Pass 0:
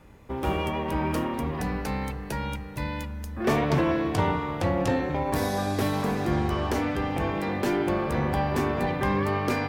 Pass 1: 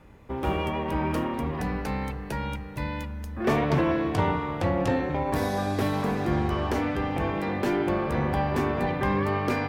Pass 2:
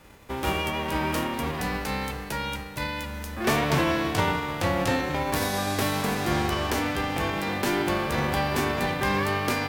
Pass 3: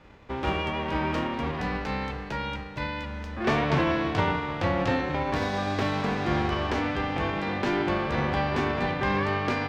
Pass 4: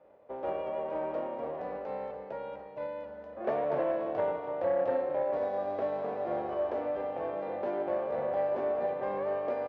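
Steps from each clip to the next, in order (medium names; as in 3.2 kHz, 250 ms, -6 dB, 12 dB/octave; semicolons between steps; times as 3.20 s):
tone controls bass 0 dB, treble -5 dB
formants flattened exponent 0.6
distance through air 180 m
band-pass filter 580 Hz, Q 5.4; delay 289 ms -12.5 dB; transformer saturation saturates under 470 Hz; trim +5 dB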